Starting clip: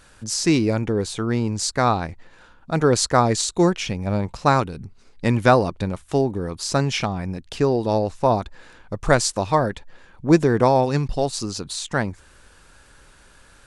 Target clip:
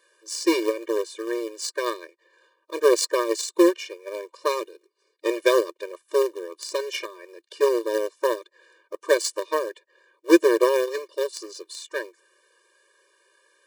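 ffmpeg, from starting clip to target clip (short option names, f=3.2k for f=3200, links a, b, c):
-filter_complex "[0:a]highpass=f=98:w=0.5412,highpass=f=98:w=1.3066,acrossover=split=240|610|1700[a][b][c][d];[b]acrusher=bits=4:mode=log:mix=0:aa=0.000001[e];[c]acompressor=threshold=-32dB:ratio=12[f];[a][e][f][d]amix=inputs=4:normalize=0,aeval=exprs='0.668*(cos(1*acos(clip(val(0)/0.668,-1,1)))-cos(1*PI/2))+0.00841*(cos(2*acos(clip(val(0)/0.668,-1,1)))-cos(2*PI/2))+0.0668*(cos(7*acos(clip(val(0)/0.668,-1,1)))-cos(7*PI/2))':c=same,afftfilt=real='re*eq(mod(floor(b*sr/1024/310),2),1)':imag='im*eq(mod(floor(b*sr/1024/310),2),1)':win_size=1024:overlap=0.75,volume=4dB"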